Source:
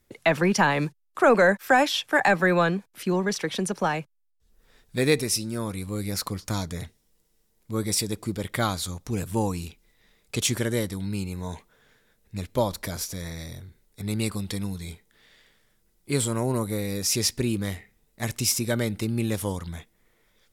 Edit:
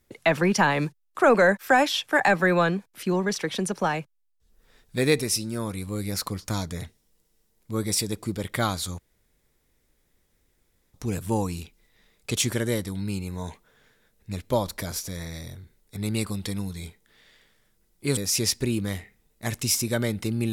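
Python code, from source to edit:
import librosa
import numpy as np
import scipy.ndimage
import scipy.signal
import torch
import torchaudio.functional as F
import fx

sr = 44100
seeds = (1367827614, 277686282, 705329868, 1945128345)

y = fx.edit(x, sr, fx.insert_room_tone(at_s=8.99, length_s=1.95),
    fx.cut(start_s=16.22, length_s=0.72), tone=tone)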